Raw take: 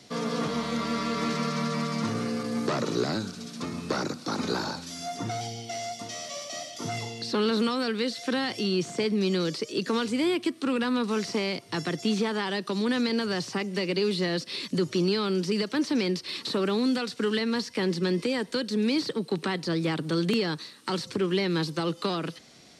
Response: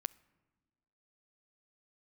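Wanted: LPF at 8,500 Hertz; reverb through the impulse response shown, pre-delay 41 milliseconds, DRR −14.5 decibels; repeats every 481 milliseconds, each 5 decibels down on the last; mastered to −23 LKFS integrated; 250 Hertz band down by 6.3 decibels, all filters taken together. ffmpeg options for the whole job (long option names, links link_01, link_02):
-filter_complex "[0:a]lowpass=8500,equalizer=frequency=250:width_type=o:gain=-8.5,aecho=1:1:481|962|1443|1924|2405|2886|3367:0.562|0.315|0.176|0.0988|0.0553|0.031|0.0173,asplit=2[link_01][link_02];[1:a]atrim=start_sample=2205,adelay=41[link_03];[link_02][link_03]afir=irnorm=-1:irlink=0,volume=16.5dB[link_04];[link_01][link_04]amix=inputs=2:normalize=0,volume=-8dB"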